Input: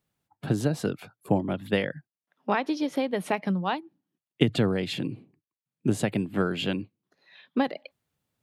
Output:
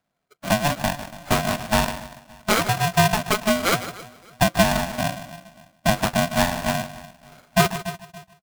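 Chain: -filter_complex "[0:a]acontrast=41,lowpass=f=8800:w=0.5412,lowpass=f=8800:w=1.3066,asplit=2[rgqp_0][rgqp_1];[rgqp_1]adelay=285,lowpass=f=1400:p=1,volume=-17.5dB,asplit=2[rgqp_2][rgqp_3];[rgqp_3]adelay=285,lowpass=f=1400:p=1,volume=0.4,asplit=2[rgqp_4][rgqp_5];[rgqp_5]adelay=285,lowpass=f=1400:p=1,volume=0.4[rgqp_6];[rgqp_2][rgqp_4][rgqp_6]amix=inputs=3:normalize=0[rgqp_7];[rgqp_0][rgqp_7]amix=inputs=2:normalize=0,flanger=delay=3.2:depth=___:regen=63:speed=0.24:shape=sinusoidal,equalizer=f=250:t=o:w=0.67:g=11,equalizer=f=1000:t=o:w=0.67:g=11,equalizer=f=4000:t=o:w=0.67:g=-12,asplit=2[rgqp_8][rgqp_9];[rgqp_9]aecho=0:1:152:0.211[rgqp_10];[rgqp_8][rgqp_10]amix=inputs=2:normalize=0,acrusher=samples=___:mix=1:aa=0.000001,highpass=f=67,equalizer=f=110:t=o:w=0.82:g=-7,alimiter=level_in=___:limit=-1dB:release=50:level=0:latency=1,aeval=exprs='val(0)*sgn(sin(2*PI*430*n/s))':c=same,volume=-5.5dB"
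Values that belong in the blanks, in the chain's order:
7.4, 16, 4.5dB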